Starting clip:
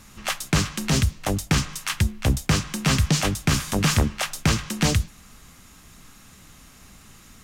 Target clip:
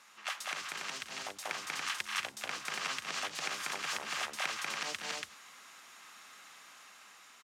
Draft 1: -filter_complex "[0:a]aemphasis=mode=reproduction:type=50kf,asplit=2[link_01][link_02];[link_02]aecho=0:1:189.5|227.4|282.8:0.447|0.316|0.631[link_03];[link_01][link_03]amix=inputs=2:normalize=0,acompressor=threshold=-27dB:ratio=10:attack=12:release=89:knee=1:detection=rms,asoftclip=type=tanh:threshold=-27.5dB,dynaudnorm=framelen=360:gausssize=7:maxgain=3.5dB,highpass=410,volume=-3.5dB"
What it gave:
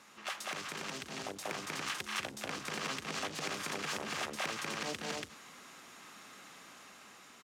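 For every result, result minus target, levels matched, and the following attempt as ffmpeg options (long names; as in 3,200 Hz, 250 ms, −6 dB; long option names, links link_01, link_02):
soft clipping: distortion +11 dB; 500 Hz band +6.5 dB
-filter_complex "[0:a]aemphasis=mode=reproduction:type=50kf,asplit=2[link_01][link_02];[link_02]aecho=0:1:189.5|227.4|282.8:0.447|0.316|0.631[link_03];[link_01][link_03]amix=inputs=2:normalize=0,acompressor=threshold=-27dB:ratio=10:attack=12:release=89:knee=1:detection=rms,asoftclip=type=tanh:threshold=-19dB,dynaudnorm=framelen=360:gausssize=7:maxgain=3.5dB,highpass=410,volume=-3.5dB"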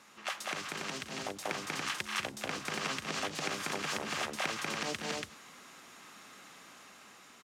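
500 Hz band +6.5 dB
-filter_complex "[0:a]aemphasis=mode=reproduction:type=50kf,asplit=2[link_01][link_02];[link_02]aecho=0:1:189.5|227.4|282.8:0.447|0.316|0.631[link_03];[link_01][link_03]amix=inputs=2:normalize=0,acompressor=threshold=-27dB:ratio=10:attack=12:release=89:knee=1:detection=rms,asoftclip=type=tanh:threshold=-19dB,dynaudnorm=framelen=360:gausssize=7:maxgain=3.5dB,highpass=860,volume=-3.5dB"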